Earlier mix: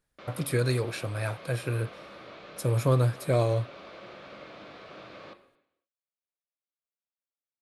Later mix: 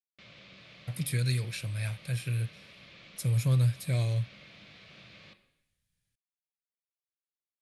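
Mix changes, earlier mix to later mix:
speech: entry +0.60 s; master: add high-order bell 630 Hz -15 dB 2.8 oct

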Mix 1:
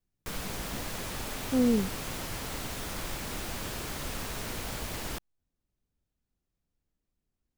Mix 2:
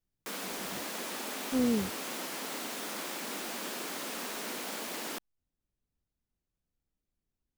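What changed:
speech -3.5 dB; background: add steep high-pass 210 Hz 36 dB/octave

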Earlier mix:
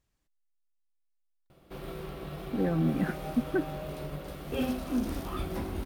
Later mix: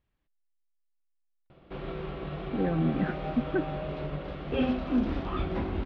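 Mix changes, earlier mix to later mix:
background +3.5 dB; master: add low-pass 3.5 kHz 24 dB/octave

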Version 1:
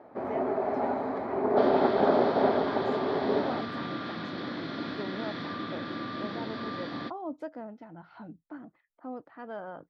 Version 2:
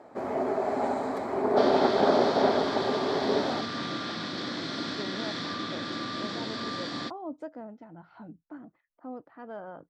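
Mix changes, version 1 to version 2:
speech: add tape spacing loss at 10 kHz 33 dB; master: remove distance through air 300 m

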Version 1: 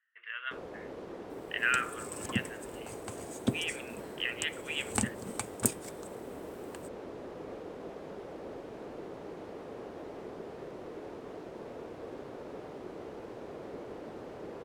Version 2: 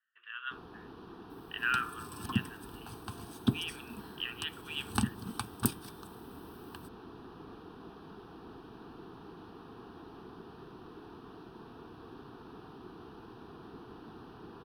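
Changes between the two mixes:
second sound +4.0 dB; master: add static phaser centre 2.1 kHz, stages 6

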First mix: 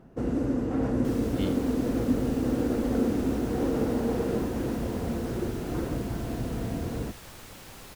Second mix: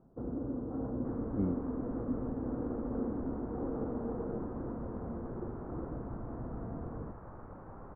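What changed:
first sound -10.0 dB; master: add steep low-pass 1.3 kHz 36 dB/octave

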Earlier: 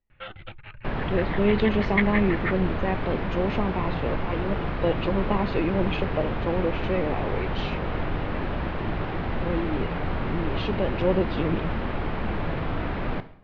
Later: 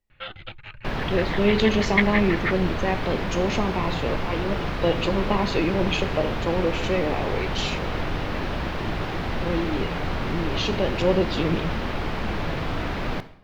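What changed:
speech: send +9.5 dB; master: remove distance through air 330 m

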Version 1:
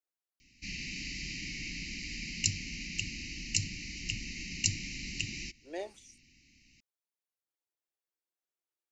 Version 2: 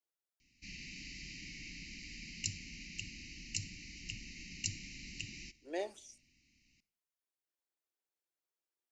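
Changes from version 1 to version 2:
background -11.0 dB; reverb: on, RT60 0.55 s

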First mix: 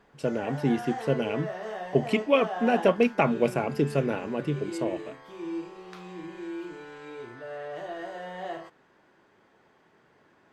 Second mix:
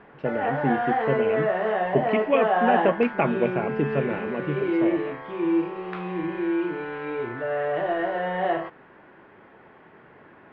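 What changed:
background +11.5 dB; master: add low-pass 2.7 kHz 24 dB/octave

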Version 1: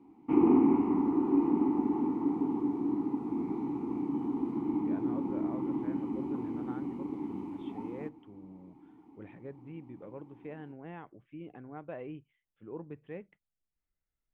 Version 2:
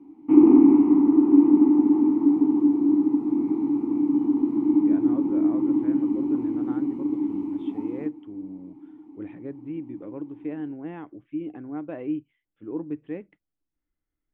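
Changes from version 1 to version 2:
speech +4.0 dB; master: add peaking EQ 300 Hz +14 dB 0.38 oct

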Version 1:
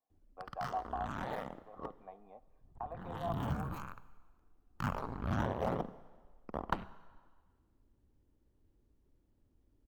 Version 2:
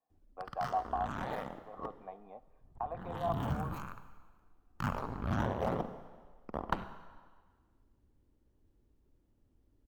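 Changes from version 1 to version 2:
speech +4.5 dB; background: send +7.0 dB

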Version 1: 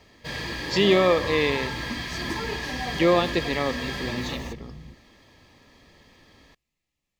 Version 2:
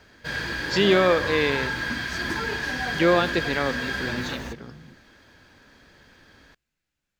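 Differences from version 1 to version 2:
second sound: add high-pass 130 Hz; master: remove Butterworth band-stop 1.5 kHz, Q 3.7

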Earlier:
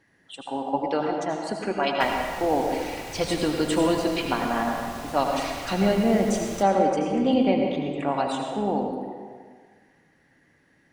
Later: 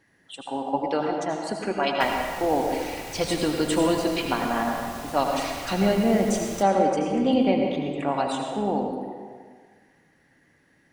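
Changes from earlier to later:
background: send off; master: add treble shelf 8.5 kHz +5 dB

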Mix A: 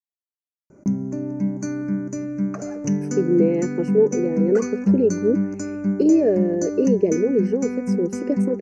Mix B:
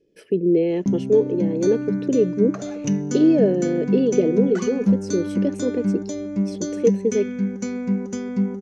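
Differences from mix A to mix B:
speech: entry -2.85 s; master: remove Butterworth band-stop 3.5 kHz, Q 1.5

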